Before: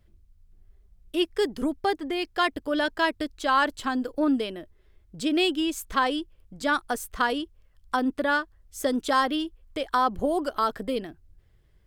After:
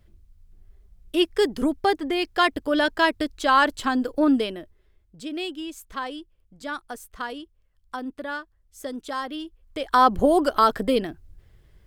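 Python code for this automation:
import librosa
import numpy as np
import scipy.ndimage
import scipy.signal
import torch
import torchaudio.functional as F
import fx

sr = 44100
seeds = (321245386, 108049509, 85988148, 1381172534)

y = fx.gain(x, sr, db=fx.line((4.43, 4.0), (5.22, -7.5), (9.23, -7.5), (9.82, 0.5), (10.02, 7.0)))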